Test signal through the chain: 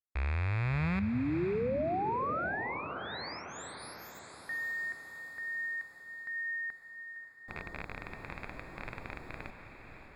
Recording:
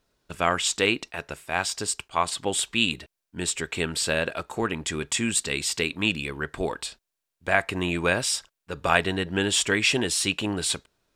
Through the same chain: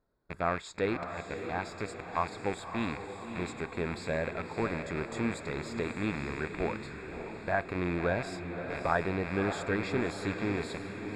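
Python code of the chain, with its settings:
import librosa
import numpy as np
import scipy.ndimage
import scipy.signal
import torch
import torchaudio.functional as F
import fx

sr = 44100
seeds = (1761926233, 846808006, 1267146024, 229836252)

p1 = fx.rattle_buzz(x, sr, strikes_db=-42.0, level_db=-11.0)
p2 = scipy.signal.lfilter(np.full(15, 1.0 / 15), 1.0, p1)
p3 = p2 + fx.echo_diffused(p2, sr, ms=595, feedback_pct=54, wet_db=-7.5, dry=0)
y = F.gain(torch.from_numpy(p3), -4.5).numpy()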